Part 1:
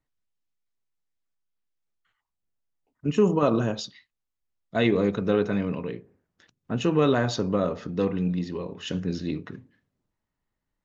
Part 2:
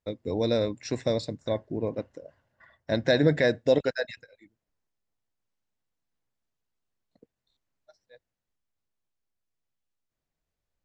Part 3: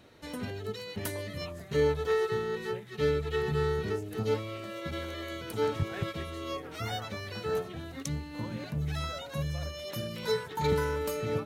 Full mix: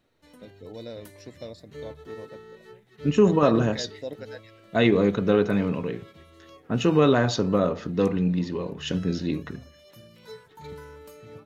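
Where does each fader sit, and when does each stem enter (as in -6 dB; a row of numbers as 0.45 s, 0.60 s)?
+2.5 dB, -13.5 dB, -13.5 dB; 0.00 s, 0.35 s, 0.00 s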